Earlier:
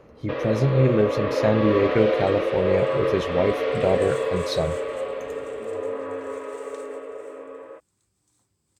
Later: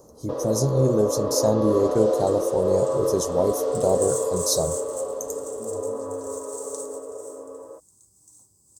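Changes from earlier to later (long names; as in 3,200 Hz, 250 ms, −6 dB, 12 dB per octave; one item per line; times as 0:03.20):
speech: add bass and treble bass −3 dB, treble +9 dB
second sound +5.5 dB
master: add drawn EQ curve 1,000 Hz 0 dB, 2,300 Hz −27 dB, 6,300 Hz +12 dB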